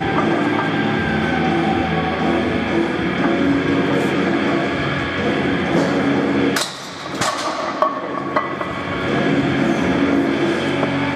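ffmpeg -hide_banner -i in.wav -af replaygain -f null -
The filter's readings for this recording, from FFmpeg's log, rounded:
track_gain = +1.3 dB
track_peak = 0.518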